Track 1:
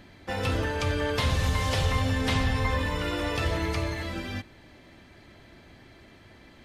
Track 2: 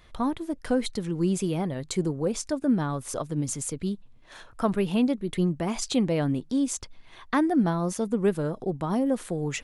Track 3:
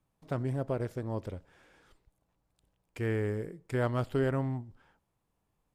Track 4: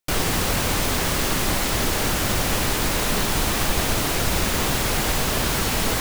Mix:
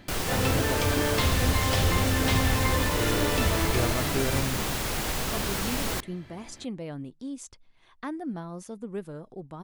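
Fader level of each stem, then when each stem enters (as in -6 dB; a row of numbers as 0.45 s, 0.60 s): +0.5 dB, -11.5 dB, -0.5 dB, -7.5 dB; 0.00 s, 0.70 s, 0.00 s, 0.00 s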